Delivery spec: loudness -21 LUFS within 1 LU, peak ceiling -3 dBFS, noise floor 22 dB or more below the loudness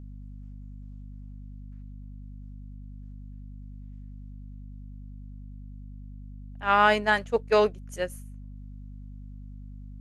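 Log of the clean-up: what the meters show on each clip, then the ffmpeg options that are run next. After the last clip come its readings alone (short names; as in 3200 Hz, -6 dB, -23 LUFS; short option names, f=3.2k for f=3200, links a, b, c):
hum 50 Hz; harmonics up to 250 Hz; hum level -39 dBFS; loudness -24.5 LUFS; peak -7.0 dBFS; loudness target -21.0 LUFS
-> -af "bandreject=f=50:t=h:w=6,bandreject=f=100:t=h:w=6,bandreject=f=150:t=h:w=6,bandreject=f=200:t=h:w=6,bandreject=f=250:t=h:w=6"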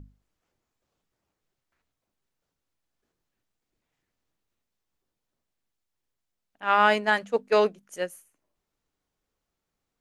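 hum none; loudness -24.0 LUFS; peak -7.0 dBFS; loudness target -21.0 LUFS
-> -af "volume=3dB"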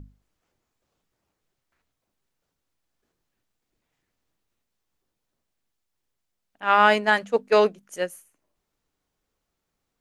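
loudness -21.5 LUFS; peak -4.0 dBFS; noise floor -81 dBFS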